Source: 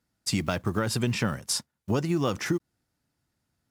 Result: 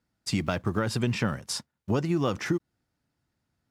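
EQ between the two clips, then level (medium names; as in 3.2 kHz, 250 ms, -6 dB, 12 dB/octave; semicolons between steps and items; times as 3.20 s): treble shelf 6.9 kHz -10 dB; 0.0 dB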